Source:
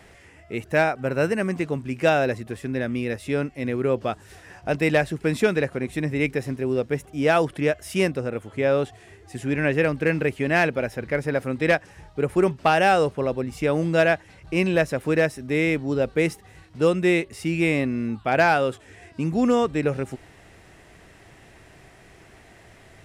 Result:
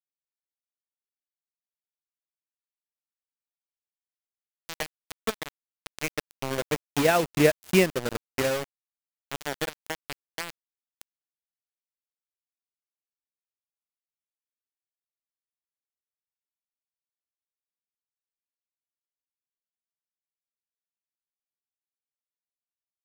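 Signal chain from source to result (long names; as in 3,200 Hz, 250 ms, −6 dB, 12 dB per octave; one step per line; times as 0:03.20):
source passing by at 0:07.58, 10 m/s, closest 3.5 metres
bit reduction 5 bits
transient designer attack +6 dB, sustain −7 dB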